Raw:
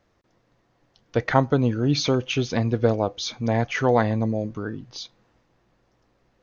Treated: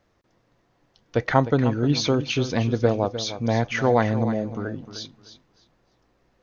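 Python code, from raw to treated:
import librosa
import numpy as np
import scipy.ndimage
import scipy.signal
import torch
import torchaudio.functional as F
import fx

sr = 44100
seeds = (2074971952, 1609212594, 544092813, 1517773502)

y = fx.echo_feedback(x, sr, ms=305, feedback_pct=21, wet_db=-12)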